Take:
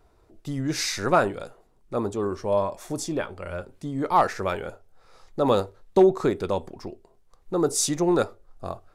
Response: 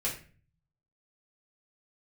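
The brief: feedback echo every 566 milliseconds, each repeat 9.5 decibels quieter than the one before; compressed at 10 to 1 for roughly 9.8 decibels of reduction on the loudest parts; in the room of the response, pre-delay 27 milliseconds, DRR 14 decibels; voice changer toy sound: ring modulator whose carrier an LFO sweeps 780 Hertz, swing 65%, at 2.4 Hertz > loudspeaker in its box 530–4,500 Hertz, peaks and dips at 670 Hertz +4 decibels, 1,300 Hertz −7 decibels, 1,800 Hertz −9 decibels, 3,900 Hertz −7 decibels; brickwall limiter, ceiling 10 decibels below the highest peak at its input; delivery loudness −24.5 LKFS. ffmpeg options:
-filter_complex "[0:a]acompressor=threshold=-22dB:ratio=10,alimiter=limit=-23.5dB:level=0:latency=1,aecho=1:1:566|1132|1698|2264:0.335|0.111|0.0365|0.012,asplit=2[link_01][link_02];[1:a]atrim=start_sample=2205,adelay=27[link_03];[link_02][link_03]afir=irnorm=-1:irlink=0,volume=-19dB[link_04];[link_01][link_04]amix=inputs=2:normalize=0,aeval=exprs='val(0)*sin(2*PI*780*n/s+780*0.65/2.4*sin(2*PI*2.4*n/s))':channel_layout=same,highpass=530,equalizer=frequency=670:width_type=q:width=4:gain=4,equalizer=frequency=1300:width_type=q:width=4:gain=-7,equalizer=frequency=1800:width_type=q:width=4:gain=-9,equalizer=frequency=3900:width_type=q:width=4:gain=-7,lowpass=frequency=4500:width=0.5412,lowpass=frequency=4500:width=1.3066,volume=15.5dB"

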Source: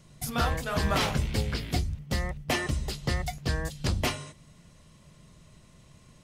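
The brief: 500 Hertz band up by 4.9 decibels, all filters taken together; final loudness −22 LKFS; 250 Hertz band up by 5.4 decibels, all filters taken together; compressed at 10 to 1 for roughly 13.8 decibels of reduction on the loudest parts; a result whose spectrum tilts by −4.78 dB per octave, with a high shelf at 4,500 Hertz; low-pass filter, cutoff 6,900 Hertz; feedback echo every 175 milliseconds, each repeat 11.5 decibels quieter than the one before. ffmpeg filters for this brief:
ffmpeg -i in.wav -af "lowpass=6900,equalizer=frequency=250:width_type=o:gain=6,equalizer=frequency=500:width_type=o:gain=4.5,highshelf=frequency=4500:gain=8,acompressor=threshold=-34dB:ratio=10,aecho=1:1:175|350|525:0.266|0.0718|0.0194,volume=17dB" out.wav

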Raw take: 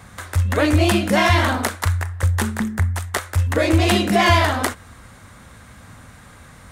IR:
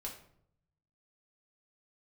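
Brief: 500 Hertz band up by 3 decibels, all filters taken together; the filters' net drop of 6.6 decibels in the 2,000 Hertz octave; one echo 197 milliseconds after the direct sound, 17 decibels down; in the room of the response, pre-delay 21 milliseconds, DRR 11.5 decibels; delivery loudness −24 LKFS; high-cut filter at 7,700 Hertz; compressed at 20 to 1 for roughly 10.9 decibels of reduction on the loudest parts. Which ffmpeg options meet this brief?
-filter_complex "[0:a]lowpass=7700,equalizer=frequency=500:width_type=o:gain=5,equalizer=frequency=2000:width_type=o:gain=-8.5,acompressor=threshold=-21dB:ratio=20,aecho=1:1:197:0.141,asplit=2[link_01][link_02];[1:a]atrim=start_sample=2205,adelay=21[link_03];[link_02][link_03]afir=irnorm=-1:irlink=0,volume=-9.5dB[link_04];[link_01][link_04]amix=inputs=2:normalize=0,volume=2dB"

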